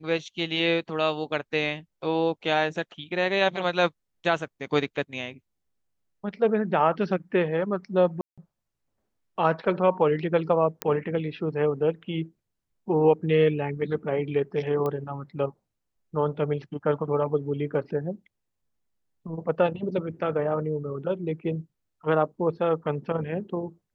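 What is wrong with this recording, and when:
8.21–8.38 s: dropout 166 ms
10.82 s: pop -9 dBFS
14.86 s: pop -18 dBFS

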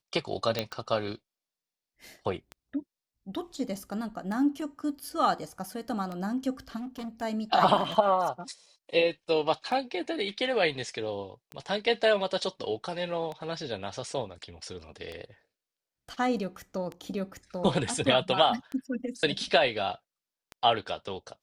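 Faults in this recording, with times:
tick 33 1/3 rpm -24 dBFS
0.59 s: pop -13 dBFS
6.76–7.23 s: clipped -34 dBFS

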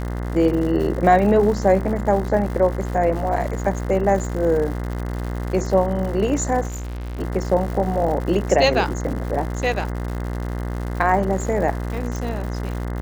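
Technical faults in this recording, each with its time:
buzz 60 Hz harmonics 35 -26 dBFS
crackle 170 per s -29 dBFS
6.68–7.21 s: clipped -27 dBFS
12.16 s: pop

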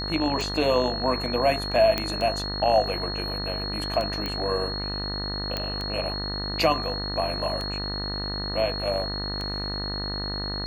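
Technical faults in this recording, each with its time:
buzz 50 Hz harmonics 39 -33 dBFS
tick 33 1/3 rpm
whine 4.3 kHz -31 dBFS
1.98 s: pop -10 dBFS
4.26 s: pop -16 dBFS
5.57 s: pop -13 dBFS

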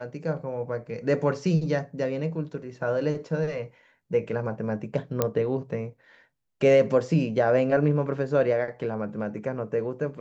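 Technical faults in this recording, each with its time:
5.22 s: pop -9 dBFS

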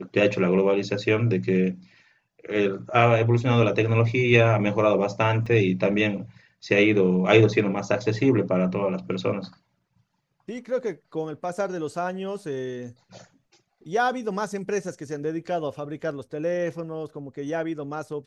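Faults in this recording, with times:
5.46 s: dropout 4.5 ms

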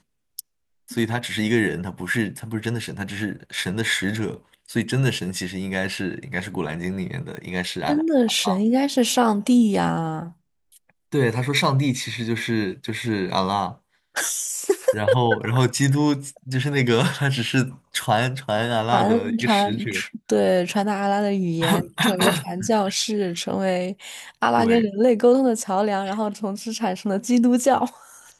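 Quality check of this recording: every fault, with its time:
7.35 s: pop -22 dBFS

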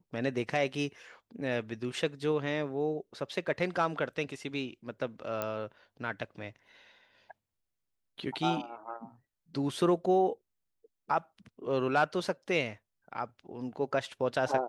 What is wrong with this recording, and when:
5.42 s: pop -17 dBFS

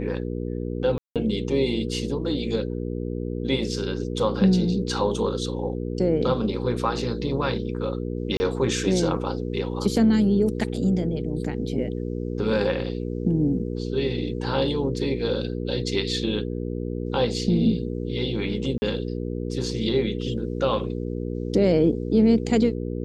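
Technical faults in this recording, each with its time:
hum 60 Hz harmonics 8 -29 dBFS
0.98–1.16 s: dropout 177 ms
8.37–8.40 s: dropout 30 ms
18.78–18.82 s: dropout 40 ms

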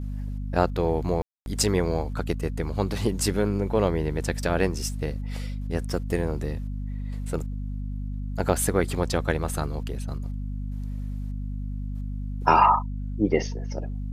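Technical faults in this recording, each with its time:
hum 50 Hz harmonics 5 -31 dBFS
1.22–1.46 s: dropout 241 ms

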